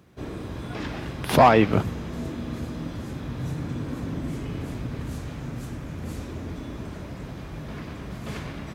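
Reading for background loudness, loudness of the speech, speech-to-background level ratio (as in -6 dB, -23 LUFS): -34.0 LUFS, -19.0 LUFS, 15.0 dB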